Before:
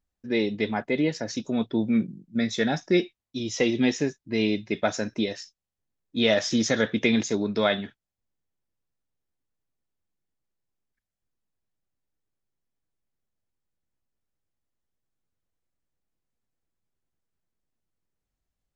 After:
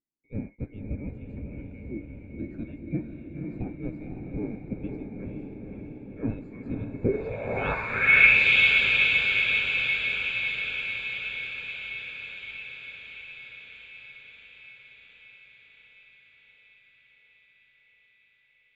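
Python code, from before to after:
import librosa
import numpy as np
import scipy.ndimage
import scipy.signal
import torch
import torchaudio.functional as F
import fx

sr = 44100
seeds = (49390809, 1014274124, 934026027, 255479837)

y = fx.band_swap(x, sr, width_hz=2000)
y = fx.echo_diffused(y, sr, ms=522, feedback_pct=72, wet_db=-3.5)
y = fx.filter_sweep_lowpass(y, sr, from_hz=290.0, to_hz=3100.0, start_s=6.96, end_s=8.46, q=3.6)
y = y * librosa.db_to_amplitude(1.0)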